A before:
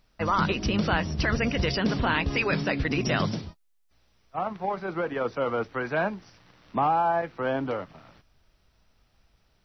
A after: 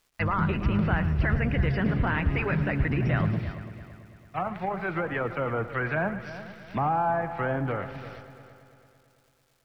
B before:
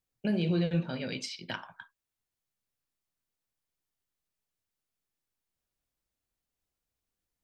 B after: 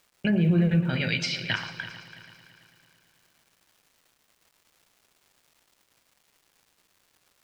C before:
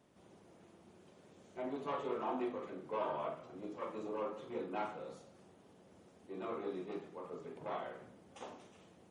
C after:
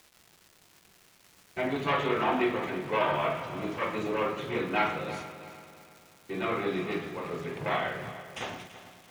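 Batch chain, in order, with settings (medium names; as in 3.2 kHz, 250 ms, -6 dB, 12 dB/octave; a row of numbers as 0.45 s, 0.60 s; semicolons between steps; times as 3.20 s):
gate -56 dBFS, range -23 dB; low-pass that closes with the level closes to 1.1 kHz, closed at -24.5 dBFS; ten-band graphic EQ 125 Hz +3 dB, 250 Hz -7 dB, 500 Hz -7 dB, 1 kHz -7 dB, 2 kHz +6 dB, 8 kHz -6 dB; in parallel at +1 dB: peak limiter -26.5 dBFS; on the sum: crackle 560 per s -56 dBFS; on a send: multi-head delay 111 ms, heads first and third, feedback 56%, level -14.5 dB; on the sum: peak normalisation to -12 dBFS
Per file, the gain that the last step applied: 0.0 dB, +4.5 dB, +11.0 dB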